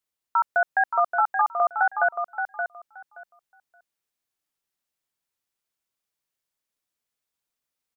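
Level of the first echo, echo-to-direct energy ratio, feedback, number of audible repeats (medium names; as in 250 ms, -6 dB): -7.0 dB, -7.0 dB, 17%, 2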